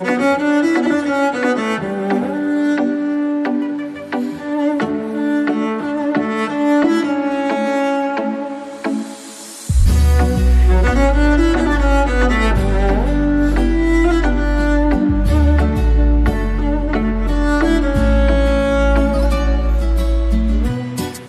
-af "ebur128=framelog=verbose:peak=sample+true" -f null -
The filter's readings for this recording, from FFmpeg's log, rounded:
Integrated loudness:
  I:         -16.6 LUFS
  Threshold: -26.7 LUFS
Loudness range:
  LRA:         4.2 LU
  Threshold: -36.6 LUFS
  LRA low:   -19.1 LUFS
  LRA high:  -14.9 LUFS
Sample peak:
  Peak:       -4.2 dBFS
True peak:
  Peak:       -4.2 dBFS